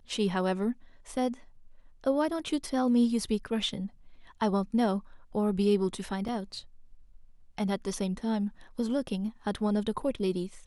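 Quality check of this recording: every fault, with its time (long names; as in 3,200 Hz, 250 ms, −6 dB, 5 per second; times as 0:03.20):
0:06.28: drop-out 4.1 ms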